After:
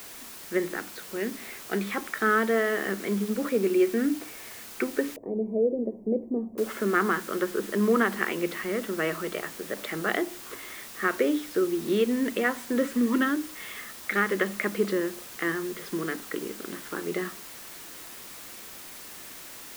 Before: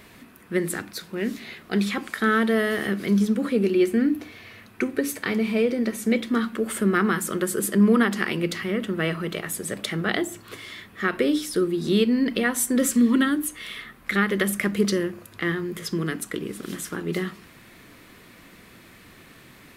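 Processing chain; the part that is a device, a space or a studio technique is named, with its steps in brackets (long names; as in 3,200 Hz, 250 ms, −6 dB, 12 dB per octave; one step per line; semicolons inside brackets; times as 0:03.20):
wax cylinder (band-pass filter 320–2,100 Hz; tape wow and flutter 29 cents; white noise bed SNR 15 dB)
0:05.16–0:06.58: inverse Chebyshev low-pass filter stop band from 1,300 Hz, stop band 40 dB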